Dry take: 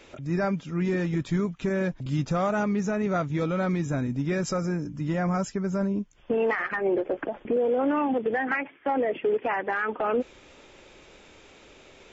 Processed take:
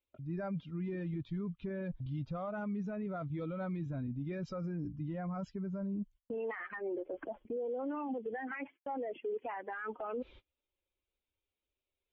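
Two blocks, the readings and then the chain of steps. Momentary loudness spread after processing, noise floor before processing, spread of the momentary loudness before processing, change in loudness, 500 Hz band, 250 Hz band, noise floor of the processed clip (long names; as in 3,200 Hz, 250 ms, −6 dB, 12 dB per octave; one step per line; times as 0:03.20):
3 LU, −53 dBFS, 5 LU, −12.5 dB, −13.0 dB, −11.5 dB, below −85 dBFS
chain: spectral dynamics exaggerated over time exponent 1.5
reversed playback
downward compressor 12 to 1, threshold −40 dBFS, peak gain reduction 18 dB
reversed playback
noise gate −58 dBFS, range −32 dB
low-pass filter 4,300 Hz 24 dB per octave
brickwall limiter −39.5 dBFS, peak gain reduction 8 dB
high-shelf EQ 2,800 Hz −9.5 dB
level +8 dB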